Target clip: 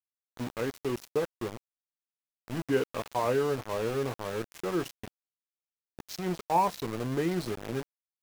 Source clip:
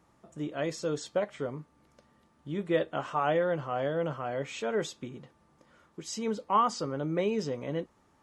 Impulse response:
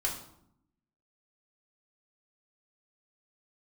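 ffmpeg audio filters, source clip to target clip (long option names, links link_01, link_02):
-af "asetrate=36028,aresample=44100,atempo=1.22405,aeval=exprs='val(0)*gte(abs(val(0)),0.02)':channel_layout=same"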